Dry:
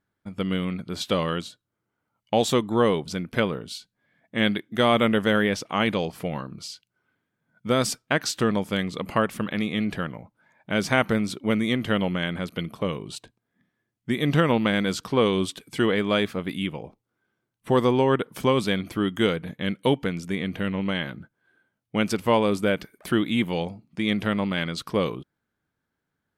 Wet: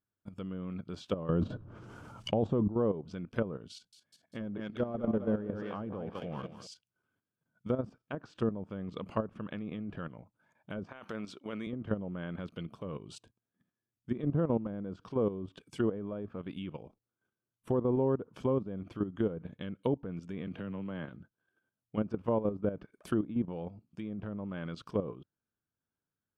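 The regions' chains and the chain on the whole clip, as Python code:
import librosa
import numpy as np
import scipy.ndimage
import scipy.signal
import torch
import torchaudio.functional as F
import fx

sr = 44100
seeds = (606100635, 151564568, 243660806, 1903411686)

y = fx.chain(x, sr, fx.median_filter(points=3),
    fx.low_shelf(hz=110.0, db=8.0),
    fx.env_flatten(amount_pct=100), at=(1.29, 2.68))
y = fx.chain(y, sr, fx.clip_hard(threshold_db=-16.0),
    fx.echo_thinned(ms=196, feedback_pct=49, hz=150.0, wet_db=-8.0), at=(3.73, 6.67))
y = fx.chain(y, sr, fx.highpass(hz=610.0, slope=6),
    fx.over_compress(threshold_db=-27.0, ratio=-0.5), at=(10.84, 11.67))
y = fx.chain(y, sr, fx.highpass(hz=94.0, slope=12),
    fx.band_squash(depth_pct=70), at=(20.47, 21.09))
y = fx.env_lowpass_down(y, sr, base_hz=740.0, full_db=-19.5)
y = fx.graphic_eq_31(y, sr, hz=(100, 800, 2000, 4000), db=(4, -3, -11, -6))
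y = fx.level_steps(y, sr, step_db=11)
y = y * librosa.db_to_amplitude(-5.5)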